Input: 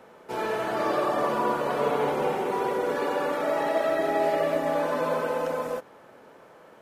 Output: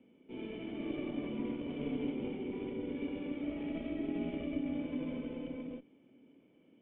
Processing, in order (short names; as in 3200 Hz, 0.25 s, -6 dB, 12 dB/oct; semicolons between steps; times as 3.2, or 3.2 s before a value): added harmonics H 4 -15 dB, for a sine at -12 dBFS; vocal tract filter i; gain +1 dB